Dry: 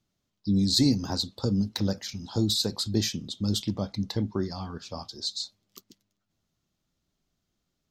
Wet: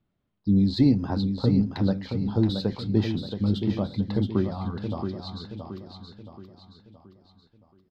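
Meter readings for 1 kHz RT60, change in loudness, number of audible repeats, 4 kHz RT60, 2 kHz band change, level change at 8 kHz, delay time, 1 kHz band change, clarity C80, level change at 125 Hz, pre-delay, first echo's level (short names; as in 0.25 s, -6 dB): none, +2.5 dB, 4, none, +0.5 dB, under -20 dB, 0.674 s, +3.0 dB, none, +4.5 dB, none, -7.0 dB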